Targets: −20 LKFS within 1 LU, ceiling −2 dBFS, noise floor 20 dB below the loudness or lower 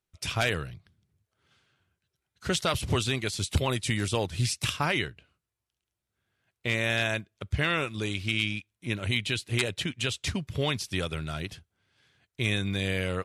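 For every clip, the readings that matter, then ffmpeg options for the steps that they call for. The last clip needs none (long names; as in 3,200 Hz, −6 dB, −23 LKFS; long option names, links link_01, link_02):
integrated loudness −29.5 LKFS; sample peak −14.0 dBFS; target loudness −20.0 LKFS
→ -af "volume=9.5dB"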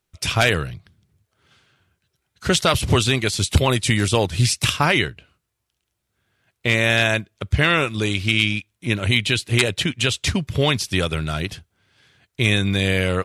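integrated loudness −20.0 LKFS; sample peak −4.5 dBFS; background noise floor −77 dBFS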